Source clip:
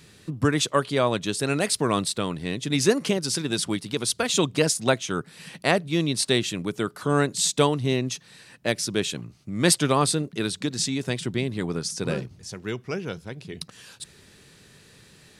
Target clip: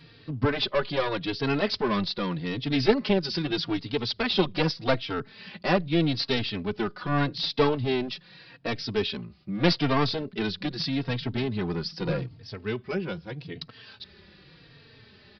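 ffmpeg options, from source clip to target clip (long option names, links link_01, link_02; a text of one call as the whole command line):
ffmpeg -i in.wav -filter_complex "[0:a]aresample=11025,aeval=exprs='clip(val(0),-1,0.0668)':channel_layout=same,aresample=44100,asplit=2[link_01][link_02];[link_02]adelay=3.8,afreqshift=-0.82[link_03];[link_01][link_03]amix=inputs=2:normalize=1,volume=3dB" out.wav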